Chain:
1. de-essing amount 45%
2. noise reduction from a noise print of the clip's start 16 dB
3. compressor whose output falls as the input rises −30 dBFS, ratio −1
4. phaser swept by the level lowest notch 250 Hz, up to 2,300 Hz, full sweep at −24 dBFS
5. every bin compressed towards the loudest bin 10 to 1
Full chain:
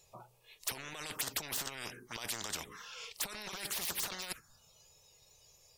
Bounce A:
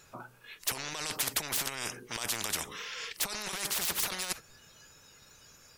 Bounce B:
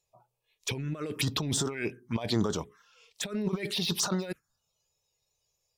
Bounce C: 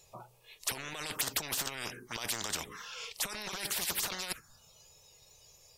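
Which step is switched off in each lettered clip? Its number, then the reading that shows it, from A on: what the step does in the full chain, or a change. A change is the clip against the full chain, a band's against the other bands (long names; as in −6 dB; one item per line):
4, change in crest factor −3.0 dB
5, 125 Hz band +15.0 dB
1, change in crest factor −3.5 dB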